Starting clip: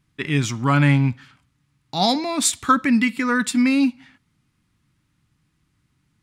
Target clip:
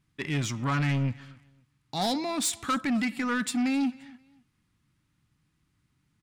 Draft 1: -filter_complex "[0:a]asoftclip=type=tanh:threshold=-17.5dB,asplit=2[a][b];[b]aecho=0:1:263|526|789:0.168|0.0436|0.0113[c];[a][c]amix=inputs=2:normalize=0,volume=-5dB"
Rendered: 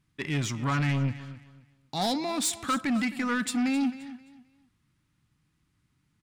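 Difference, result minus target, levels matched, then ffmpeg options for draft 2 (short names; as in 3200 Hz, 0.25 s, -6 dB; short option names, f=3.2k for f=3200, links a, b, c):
echo-to-direct +7.5 dB
-filter_complex "[0:a]asoftclip=type=tanh:threshold=-17.5dB,asplit=2[a][b];[b]aecho=0:1:263|526:0.0708|0.0184[c];[a][c]amix=inputs=2:normalize=0,volume=-5dB"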